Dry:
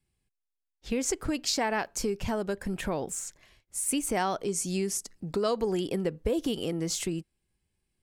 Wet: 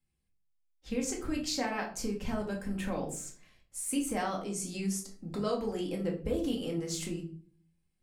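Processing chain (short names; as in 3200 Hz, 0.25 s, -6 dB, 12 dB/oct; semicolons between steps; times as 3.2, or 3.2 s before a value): shoebox room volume 370 m³, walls furnished, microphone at 2.1 m; gain -8 dB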